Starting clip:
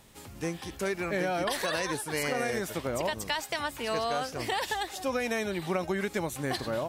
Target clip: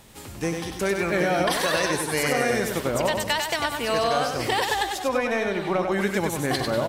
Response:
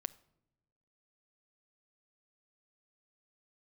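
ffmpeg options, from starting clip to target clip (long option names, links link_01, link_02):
-filter_complex "[0:a]asettb=1/sr,asplit=3[link_01][link_02][link_03];[link_01]atrim=end=4.994[link_04];[link_02]atrim=start=4.99:end=5.92,asetpts=PTS-STARTPTS,afade=type=in:duration=0.004:curve=qsin,afade=type=out:start_time=0.926:duration=0.004:curve=qsin,asplit=2[link_05][link_06];[link_06]highpass=frequency=720:poles=1,volume=9dB,asoftclip=type=tanh:threshold=-17.5dB[link_07];[link_05][link_07]amix=inputs=2:normalize=0,lowpass=frequency=1300:poles=1,volume=-6dB[link_08];[link_03]atrim=start=5.916[link_09];[link_04][link_08]acrossfade=duration=0.004:curve1=hsin:curve2=qsin[link_10];[link_10][link_09]acrossfade=duration=0.004:curve1=qsin:curve2=hsin,asplit=2[link_11][link_12];[link_12]aecho=0:1:97|194|291|388:0.562|0.202|0.0729|0.0262[link_13];[link_11][link_13]amix=inputs=2:normalize=0,volume=6dB"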